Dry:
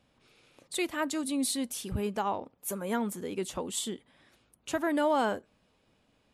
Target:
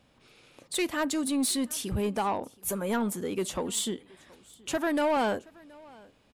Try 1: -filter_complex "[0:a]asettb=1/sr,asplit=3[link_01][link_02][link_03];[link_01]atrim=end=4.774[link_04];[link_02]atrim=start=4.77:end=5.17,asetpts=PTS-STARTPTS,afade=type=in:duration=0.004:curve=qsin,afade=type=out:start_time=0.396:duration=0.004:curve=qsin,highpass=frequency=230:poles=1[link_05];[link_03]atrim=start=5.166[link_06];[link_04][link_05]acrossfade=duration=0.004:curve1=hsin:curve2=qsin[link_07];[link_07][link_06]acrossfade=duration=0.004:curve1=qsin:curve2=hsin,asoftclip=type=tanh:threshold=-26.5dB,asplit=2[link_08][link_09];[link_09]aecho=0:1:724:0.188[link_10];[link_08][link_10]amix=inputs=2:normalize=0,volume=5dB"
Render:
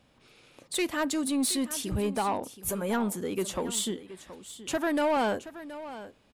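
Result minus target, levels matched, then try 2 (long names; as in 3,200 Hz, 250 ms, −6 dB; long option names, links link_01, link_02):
echo-to-direct +10 dB
-filter_complex "[0:a]asettb=1/sr,asplit=3[link_01][link_02][link_03];[link_01]atrim=end=4.774[link_04];[link_02]atrim=start=4.77:end=5.17,asetpts=PTS-STARTPTS,afade=type=in:duration=0.004:curve=qsin,afade=type=out:start_time=0.396:duration=0.004:curve=qsin,highpass=frequency=230:poles=1[link_05];[link_03]atrim=start=5.166[link_06];[link_04][link_05]acrossfade=duration=0.004:curve1=hsin:curve2=qsin[link_07];[link_07][link_06]acrossfade=duration=0.004:curve1=qsin:curve2=hsin,asoftclip=type=tanh:threshold=-26.5dB,asplit=2[link_08][link_09];[link_09]aecho=0:1:724:0.0596[link_10];[link_08][link_10]amix=inputs=2:normalize=0,volume=5dB"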